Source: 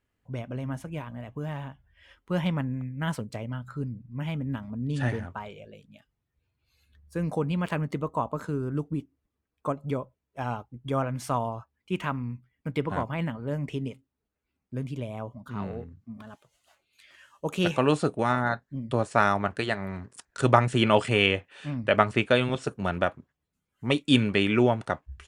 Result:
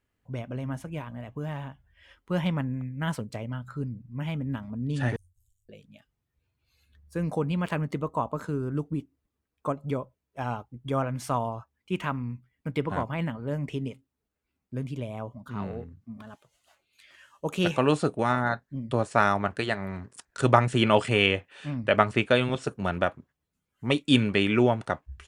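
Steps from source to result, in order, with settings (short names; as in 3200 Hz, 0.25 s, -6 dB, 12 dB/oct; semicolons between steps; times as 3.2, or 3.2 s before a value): 5.16–5.69 inverse Chebyshev band-stop 210–2200 Hz, stop band 70 dB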